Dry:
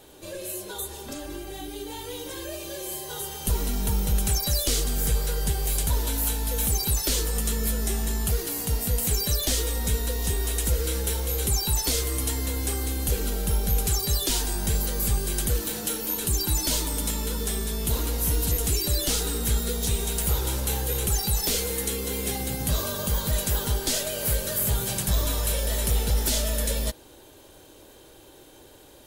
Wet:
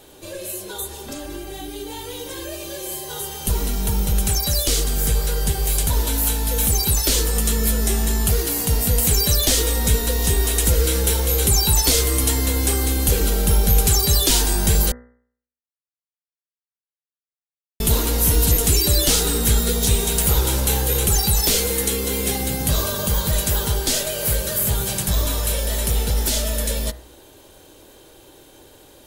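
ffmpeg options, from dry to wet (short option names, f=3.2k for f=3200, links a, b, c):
-filter_complex "[0:a]asplit=3[a][b][c];[a]atrim=end=14.92,asetpts=PTS-STARTPTS,afade=t=out:st=14.916:d=0.004:c=hsin[d];[b]atrim=start=14.92:end=17.8,asetpts=PTS-STARTPTS,volume=0[e];[c]atrim=start=17.8,asetpts=PTS-STARTPTS,afade=t=in:d=0.004:c=hsin[f];[d][e][f]concat=n=3:v=0:a=1,dynaudnorm=f=460:g=31:m=4.5dB,bandreject=f=60.94:t=h:w=4,bandreject=f=121.88:t=h:w=4,bandreject=f=182.82:t=h:w=4,bandreject=f=243.76:t=h:w=4,bandreject=f=304.7:t=h:w=4,bandreject=f=365.64:t=h:w=4,bandreject=f=426.58:t=h:w=4,bandreject=f=487.52:t=h:w=4,bandreject=f=548.46:t=h:w=4,bandreject=f=609.4:t=h:w=4,bandreject=f=670.34:t=h:w=4,bandreject=f=731.28:t=h:w=4,bandreject=f=792.22:t=h:w=4,bandreject=f=853.16:t=h:w=4,bandreject=f=914.1:t=h:w=4,bandreject=f=975.04:t=h:w=4,bandreject=f=1.03598k:t=h:w=4,bandreject=f=1.09692k:t=h:w=4,bandreject=f=1.15786k:t=h:w=4,bandreject=f=1.2188k:t=h:w=4,bandreject=f=1.27974k:t=h:w=4,bandreject=f=1.34068k:t=h:w=4,bandreject=f=1.40162k:t=h:w=4,bandreject=f=1.46256k:t=h:w=4,bandreject=f=1.5235k:t=h:w=4,bandreject=f=1.58444k:t=h:w=4,bandreject=f=1.64538k:t=h:w=4,bandreject=f=1.70632k:t=h:w=4,bandreject=f=1.76726k:t=h:w=4,bandreject=f=1.8282k:t=h:w=4,bandreject=f=1.88914k:t=h:w=4,bandreject=f=1.95008k:t=h:w=4,bandreject=f=2.01102k:t=h:w=4,volume=4dB"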